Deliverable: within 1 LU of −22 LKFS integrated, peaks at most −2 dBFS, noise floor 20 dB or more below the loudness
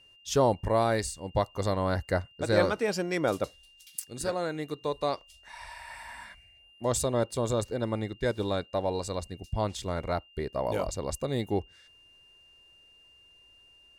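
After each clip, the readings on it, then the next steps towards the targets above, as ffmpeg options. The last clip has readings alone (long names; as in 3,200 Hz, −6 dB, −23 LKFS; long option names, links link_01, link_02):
interfering tone 2,800 Hz; level of the tone −56 dBFS; integrated loudness −30.5 LKFS; sample peak −9.5 dBFS; target loudness −22.0 LKFS
→ -af "bandreject=frequency=2800:width=30"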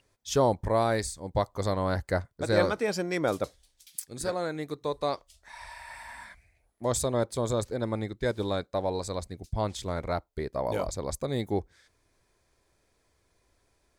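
interfering tone none found; integrated loudness −30.5 LKFS; sample peak −9.5 dBFS; target loudness −22.0 LKFS
→ -af "volume=8.5dB,alimiter=limit=-2dB:level=0:latency=1"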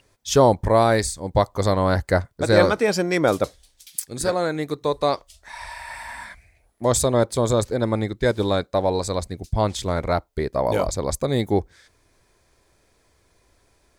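integrated loudness −22.0 LKFS; sample peak −2.0 dBFS; background noise floor −63 dBFS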